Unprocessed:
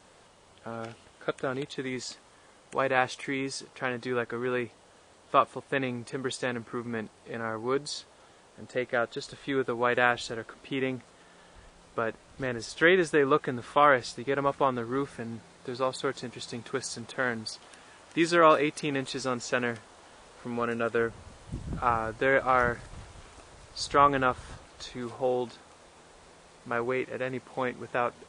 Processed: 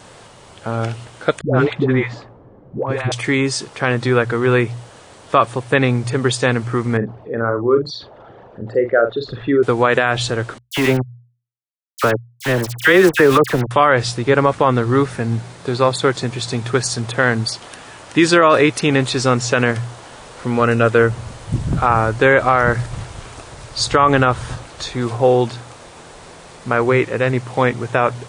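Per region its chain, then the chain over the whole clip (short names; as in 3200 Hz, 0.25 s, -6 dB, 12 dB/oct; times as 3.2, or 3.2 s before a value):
1.41–3.12 low-pass opened by the level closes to 350 Hz, open at -23.5 dBFS + negative-ratio compressor -31 dBFS, ratio -0.5 + dispersion highs, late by 0.106 s, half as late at 500 Hz
6.97–9.63 formant sharpening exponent 2 + air absorption 240 m + doubler 43 ms -8.5 dB
10.58–13.71 HPF 120 Hz + sample gate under -33 dBFS + dispersion lows, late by 62 ms, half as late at 1800 Hz
whole clip: bell 120 Hz +15 dB 0.24 oct; notches 60/120 Hz; maximiser +15.5 dB; gain -1 dB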